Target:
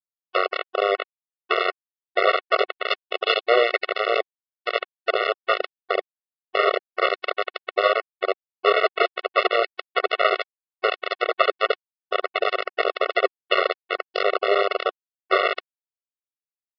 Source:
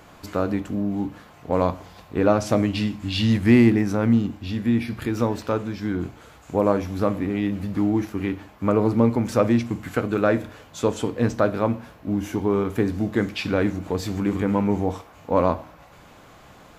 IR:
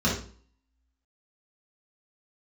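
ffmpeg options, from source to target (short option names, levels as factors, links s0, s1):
-filter_complex "[0:a]flanger=delay=3.3:depth=4.4:regen=33:speed=0.13:shape=triangular,equalizer=f=700:t=o:w=0.39:g=8,flanger=delay=4.8:depth=7.2:regen=67:speed=0.34:shape=sinusoidal,acrossover=split=170|860[s0][s1][s2];[s1]aeval=exprs='abs(val(0))':c=same[s3];[s0][s3][s2]amix=inputs=3:normalize=0,acompressor=mode=upward:threshold=0.0112:ratio=2.5,equalizer=f=350:t=o:w=1.4:g=7.5,acrossover=split=210|1800[s4][s5][s6];[s4]adelay=70[s7];[s6]adelay=150[s8];[s7][s5][s8]amix=inputs=3:normalize=0,acompressor=threshold=0.0224:ratio=6,aresample=11025,acrusher=bits=4:mix=0:aa=0.000001,aresample=44100,lowpass=f=3300:w=0.5412,lowpass=f=3300:w=1.3066,alimiter=level_in=28.2:limit=0.891:release=50:level=0:latency=1,afftfilt=real='re*eq(mod(floor(b*sr/1024/370),2),1)':imag='im*eq(mod(floor(b*sr/1024/370),2),1)':win_size=1024:overlap=0.75,volume=0.891"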